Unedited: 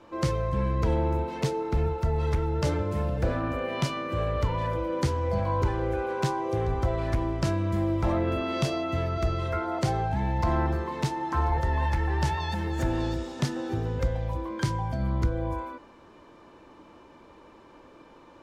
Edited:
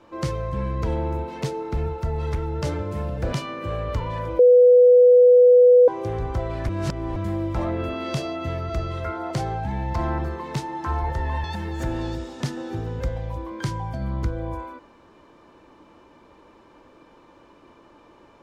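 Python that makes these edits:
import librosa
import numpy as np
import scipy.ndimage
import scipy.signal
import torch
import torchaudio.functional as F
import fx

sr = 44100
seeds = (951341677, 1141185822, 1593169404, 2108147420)

y = fx.edit(x, sr, fx.cut(start_s=3.33, length_s=0.48),
    fx.bleep(start_s=4.87, length_s=1.49, hz=494.0, db=-9.0),
    fx.reverse_span(start_s=7.17, length_s=0.47),
    fx.cut(start_s=11.92, length_s=0.51), tone=tone)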